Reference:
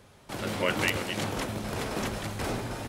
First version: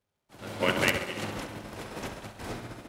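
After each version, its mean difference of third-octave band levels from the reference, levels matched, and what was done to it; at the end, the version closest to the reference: 6.5 dB: crackle 250/s -44 dBFS; tape echo 67 ms, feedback 85%, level -4.5 dB, low-pass 5500 Hz; upward expander 2.5:1, over -44 dBFS; gain +2 dB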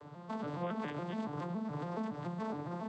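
11.5 dB: arpeggiated vocoder minor triad, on D3, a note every 0.14 s; fifteen-band EQ 1000 Hz +8 dB, 2500 Hz -6 dB, 6300 Hz -6 dB; compressor 3:1, threshold -48 dBFS, peak gain reduction 17 dB; gain +7 dB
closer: first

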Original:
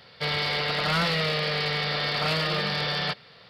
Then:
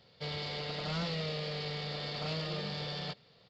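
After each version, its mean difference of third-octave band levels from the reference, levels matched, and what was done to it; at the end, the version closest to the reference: 4.5 dB: median filter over 5 samples; bell 1600 Hz -10.5 dB 1.9 oct; downsampling 16000 Hz; gain -7 dB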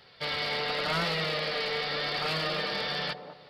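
2.0 dB: notches 50/100/150/200 Hz; flange 0.89 Hz, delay 2.3 ms, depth 2.4 ms, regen +60%; band-limited delay 0.203 s, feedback 33%, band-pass 430 Hz, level -5 dB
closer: second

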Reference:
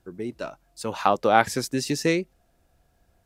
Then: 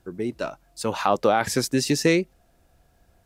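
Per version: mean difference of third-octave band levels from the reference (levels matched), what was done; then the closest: 2.5 dB: maximiser +10.5 dB; gain -6.5 dB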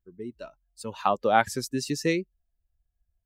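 5.0 dB: per-bin expansion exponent 1.5; gain -1.5 dB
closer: first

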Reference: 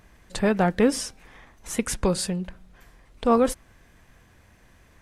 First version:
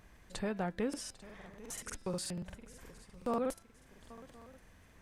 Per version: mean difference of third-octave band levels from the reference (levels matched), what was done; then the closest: 6.0 dB: de-hum 335.2 Hz, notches 15; compressor 1.5:1, threshold -44 dBFS, peak gain reduction 10.5 dB; swung echo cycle 1.063 s, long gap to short 3:1, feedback 33%, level -18 dB; crackling interface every 0.12 s, samples 2048, repeat, from 0.89; gain -5.5 dB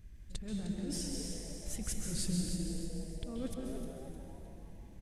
12.5 dB: passive tone stack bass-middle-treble 10-0-1; negative-ratio compressor -43 dBFS, ratio -0.5; on a send: frequency-shifting echo 0.306 s, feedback 41%, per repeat +150 Hz, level -10 dB; on the sum: plate-style reverb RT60 2.3 s, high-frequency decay 0.9×, pre-delay 0.12 s, DRR 0 dB; gain +6 dB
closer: first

